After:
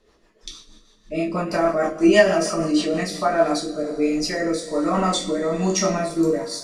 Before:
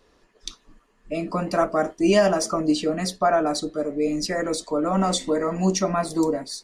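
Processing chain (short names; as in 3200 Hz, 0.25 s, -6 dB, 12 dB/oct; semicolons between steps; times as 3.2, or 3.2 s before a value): two-slope reverb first 0.44 s, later 2.3 s, from -17 dB, DRR -2.5 dB; dynamic EQ 2300 Hz, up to +5 dB, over -38 dBFS, Q 1.3; rotary speaker horn 6.3 Hz, later 1.2 Hz, at 2.8; gain -1 dB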